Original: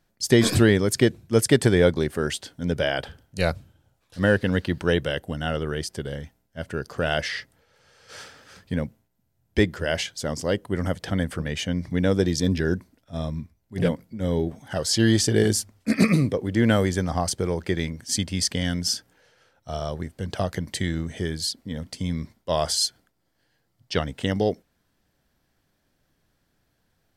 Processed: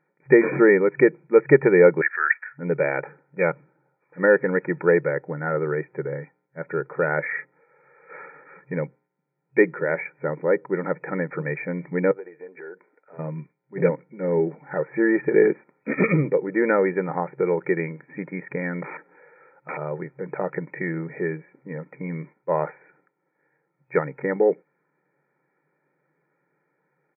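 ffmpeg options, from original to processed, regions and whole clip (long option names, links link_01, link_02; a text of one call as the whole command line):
ffmpeg -i in.wav -filter_complex "[0:a]asettb=1/sr,asplit=3[link_01][link_02][link_03];[link_01]atrim=end=2.014[link_04];[link_02]atrim=start=2.01:end=2.58,asetpts=PTS-STARTPTS,afade=type=in:duration=0.004:curve=qsin,afade=type=out:start_time=0.566:duration=0.004:curve=qsin,highpass=frequency=1700:width_type=q:width=7.8,afreqshift=-39[link_05];[link_03]atrim=start=2.576[link_06];[link_04][link_05]acrossfade=duration=0.004:curve1=hsin:curve2=qsin[link_07];[link_07][link_06]acrossfade=duration=0.004:curve1=qsin:curve2=hsin,asettb=1/sr,asplit=3[link_08][link_09][link_10];[link_08]atrim=end=12.114[link_11];[link_09]atrim=start=12.11:end=13.19,asetpts=PTS-STARTPTS,afade=type=in:duration=0.004:curve=qsin,afade=type=out:start_time=1.076:duration=0.004:curve=qsin,acompressor=threshold=-36dB:ratio=8:attack=3.2:release=140:knee=1:detection=peak,highpass=430,equalizer=frequency=440:width_type=q:width=4:gain=7,equalizer=frequency=710:width_type=q:width=4:gain=4,equalizer=frequency=1500:width_type=q:width=4:gain=6,equalizer=frequency=2200:width_type=q:width=4:gain=3,lowpass=frequency=2600:width=0.5412,lowpass=frequency=2600:width=1.3066[link_12];[link_10]atrim=start=13.186[link_13];[link_11][link_12]acrossfade=duration=0.004:curve1=hsin:curve2=qsin[link_14];[link_14][link_13]acrossfade=duration=0.004:curve1=qsin:curve2=hsin,asettb=1/sr,asplit=3[link_15][link_16][link_17];[link_15]atrim=end=18.824[link_18];[link_16]atrim=start=18.82:end=19.77,asetpts=PTS-STARTPTS,afade=type=in:duration=0.004:curve=qsin,afade=type=out:start_time=0.946:duration=0.004:curve=qsin,highpass=150,acontrast=33,aeval=exprs='(mod(18.8*val(0)+1,2)-1)/18.8':channel_layout=same[link_19];[link_17]atrim=start=19.766[link_20];[link_18][link_19]acrossfade=duration=0.004:curve1=hsin:curve2=qsin[link_21];[link_21][link_20]acrossfade=duration=0.004:curve1=qsin:curve2=hsin,afftfilt=real='re*between(b*sr/4096,130,2500)':imag='im*between(b*sr/4096,130,2500)':win_size=4096:overlap=0.75,aecho=1:1:2.2:0.73,volume=1.5dB" out.wav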